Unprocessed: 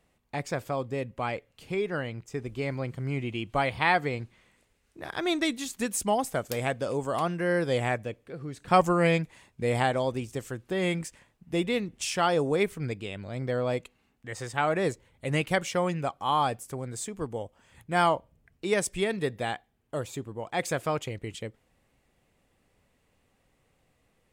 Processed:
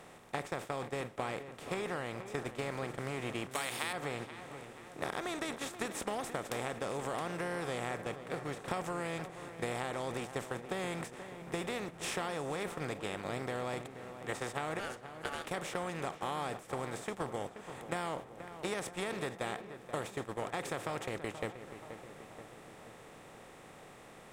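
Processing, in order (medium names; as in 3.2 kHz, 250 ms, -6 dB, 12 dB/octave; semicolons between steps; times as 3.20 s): spectral levelling over time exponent 0.4; gate -24 dBFS, range -14 dB; 3.51–3.93 s: tilt EQ +4.5 dB/octave; compression 6:1, threshold -30 dBFS, peak gain reduction 17.5 dB; 14.79–15.46 s: ring modulator 1 kHz; on a send: filtered feedback delay 480 ms, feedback 64%, low-pass 2.5 kHz, level -11 dB; on the sum: trim -5 dB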